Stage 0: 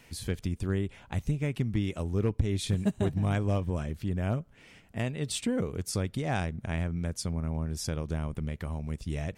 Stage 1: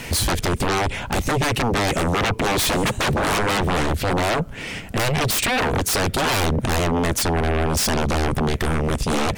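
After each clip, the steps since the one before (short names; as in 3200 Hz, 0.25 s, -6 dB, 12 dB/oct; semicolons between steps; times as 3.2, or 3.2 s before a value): sine folder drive 20 dB, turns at -17 dBFS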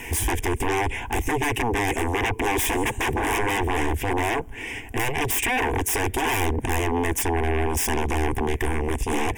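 fixed phaser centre 870 Hz, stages 8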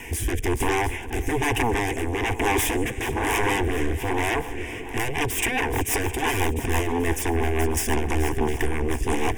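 swung echo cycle 0.709 s, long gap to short 1.5:1, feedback 44%, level -12.5 dB; rotary speaker horn 1.1 Hz, later 6 Hz, at 4.58; gain +1.5 dB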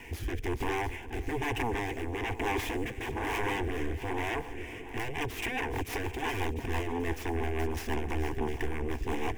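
median filter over 5 samples; gain -8.5 dB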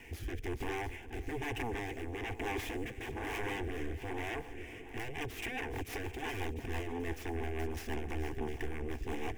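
bell 980 Hz -8.5 dB 0.2 oct; gain -5.5 dB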